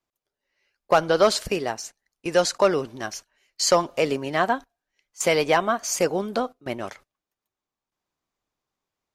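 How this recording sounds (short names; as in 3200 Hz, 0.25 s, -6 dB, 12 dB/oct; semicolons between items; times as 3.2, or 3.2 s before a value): noise floor -89 dBFS; spectral tilt -3.0 dB/oct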